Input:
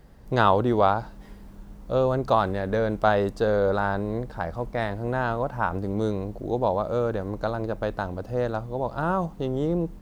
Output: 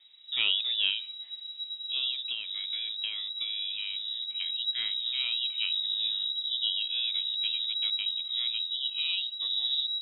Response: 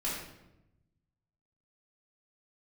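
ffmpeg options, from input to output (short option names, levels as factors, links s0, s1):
-filter_complex "[0:a]asubboost=boost=7.5:cutoff=81,asettb=1/sr,asplit=3[s0][s1][s2];[s0]atrim=end=2.094[s3];[s1]atrim=start=2.09:end=4.4,asetpts=PTS-STARTPTS,afade=t=in:d=0.004:c=qsin,afade=t=out:st=2.306:d=0.004:c=qsin,acompressor=threshold=0.0631:ratio=6[s4];[s2]atrim=start=4.396[s5];[s3][s4]acrossfade=d=0.004:c1=hsin:c2=qsin[s6];[s6][s5]acrossfade=d=0.004:c1=qsin:c2=hsin,flanger=delay=1.6:depth=1.6:regen=-66:speed=0.31:shape=triangular,lowpass=f=3300:t=q:w=0.5098,lowpass=f=3300:t=q:w=0.6013,lowpass=f=3300:t=q:w=0.9,lowpass=f=3300:t=q:w=2.563,afreqshift=-3900,volume=0.668"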